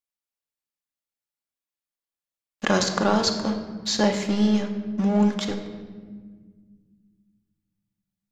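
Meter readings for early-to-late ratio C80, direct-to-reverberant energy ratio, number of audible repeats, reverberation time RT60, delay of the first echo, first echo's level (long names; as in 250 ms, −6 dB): 9.0 dB, 3.5 dB, no echo audible, 1.6 s, no echo audible, no echo audible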